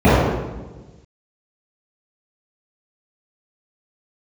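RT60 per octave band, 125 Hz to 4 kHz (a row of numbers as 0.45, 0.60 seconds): 1.7, 1.5, 1.3, 1.1, 0.95, 0.85 seconds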